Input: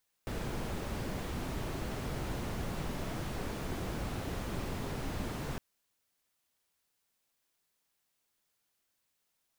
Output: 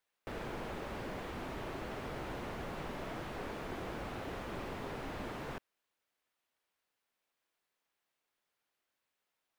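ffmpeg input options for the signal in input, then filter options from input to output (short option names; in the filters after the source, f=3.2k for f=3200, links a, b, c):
-f lavfi -i "anoisesrc=c=brown:a=0.07:d=5.31:r=44100:seed=1"
-af "bass=f=250:g=-9,treble=f=4k:g=-11"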